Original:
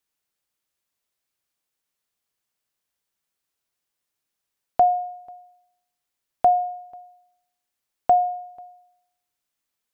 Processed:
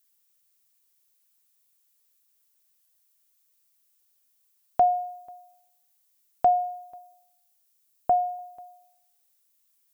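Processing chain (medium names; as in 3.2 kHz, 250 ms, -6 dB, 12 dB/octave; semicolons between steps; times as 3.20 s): 6.98–8.39 s: low-pass 1 kHz 6 dB/octave; added noise violet -66 dBFS; trim -3 dB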